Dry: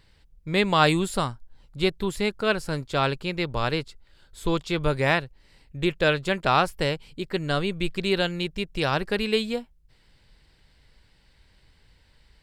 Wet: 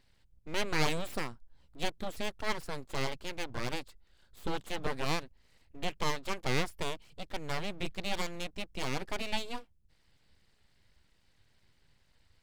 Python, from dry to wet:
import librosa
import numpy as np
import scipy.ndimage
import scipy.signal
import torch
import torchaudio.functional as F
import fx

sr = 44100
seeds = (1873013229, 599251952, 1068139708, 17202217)

y = fx.wow_flutter(x, sr, seeds[0], rate_hz=2.1, depth_cents=22.0)
y = np.abs(y)
y = F.gain(torch.from_numpy(y), -8.0).numpy()